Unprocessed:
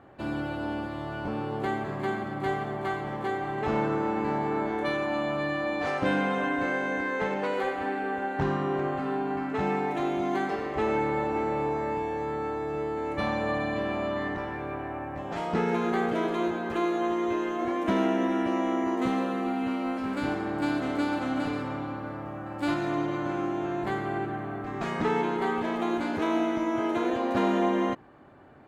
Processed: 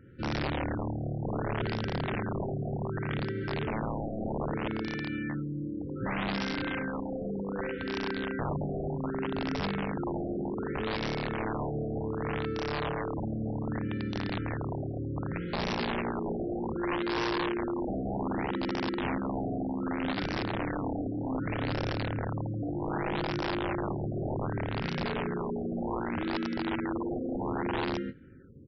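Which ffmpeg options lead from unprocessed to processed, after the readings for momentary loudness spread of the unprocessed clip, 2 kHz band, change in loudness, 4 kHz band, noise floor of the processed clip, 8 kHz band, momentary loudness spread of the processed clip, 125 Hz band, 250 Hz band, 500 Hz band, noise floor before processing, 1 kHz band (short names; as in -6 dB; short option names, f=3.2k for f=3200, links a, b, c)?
6 LU, -4.5 dB, -4.0 dB, +1.5 dB, -35 dBFS, n/a, 3 LU, +3.5 dB, -3.5 dB, -5.5 dB, -37 dBFS, -6.5 dB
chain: -filter_complex "[0:a]aecho=1:1:46|89|109|163|187:0.422|0.168|0.126|0.531|0.158,acrossover=split=4400[a][b];[b]acompressor=threshold=-59dB:ratio=4:attack=1:release=60[c];[a][c]amix=inputs=2:normalize=0,bass=f=250:g=11,treble=f=4k:g=-8,alimiter=limit=-19dB:level=0:latency=1:release=34,afftfilt=real='re*(1-between(b*sr/4096,550,1300))':imag='im*(1-between(b*sr/4096,550,1300))':win_size=4096:overlap=0.75,aresample=16000,aeval=exprs='(mod(10.6*val(0)+1,2)-1)/10.6':c=same,aresample=44100,afftfilt=real='re*lt(b*sr/1024,750*pow(5900/750,0.5+0.5*sin(2*PI*0.65*pts/sr)))':imag='im*lt(b*sr/1024,750*pow(5900/750,0.5+0.5*sin(2*PI*0.65*pts/sr)))':win_size=1024:overlap=0.75,volume=-5dB"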